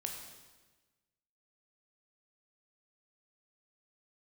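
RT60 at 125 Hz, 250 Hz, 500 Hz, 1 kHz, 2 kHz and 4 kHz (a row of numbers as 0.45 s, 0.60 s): 1.5 s, 1.4 s, 1.3 s, 1.2 s, 1.2 s, 1.2 s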